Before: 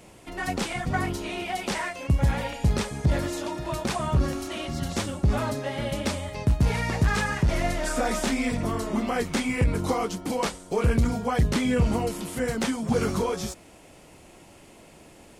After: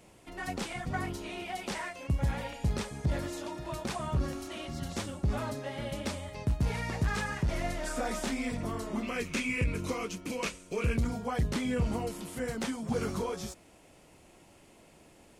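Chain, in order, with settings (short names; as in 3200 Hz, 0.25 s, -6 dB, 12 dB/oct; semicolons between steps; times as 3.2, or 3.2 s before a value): 9.03–10.97 thirty-one-band EQ 800 Hz -12 dB, 2500 Hz +12 dB, 6300 Hz +4 dB; gain -7.5 dB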